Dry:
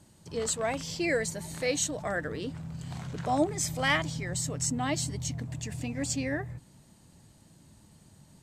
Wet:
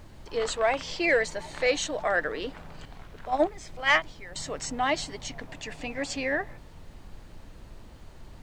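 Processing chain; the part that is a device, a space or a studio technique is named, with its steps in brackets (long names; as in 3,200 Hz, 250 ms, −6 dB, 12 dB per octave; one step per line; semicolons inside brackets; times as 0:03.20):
0:02.85–0:04.36: noise gate −25 dBFS, range −12 dB
aircraft cabin announcement (band-pass filter 480–3,500 Hz; soft clipping −18.5 dBFS, distortion −20 dB; brown noise bed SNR 13 dB)
level +8 dB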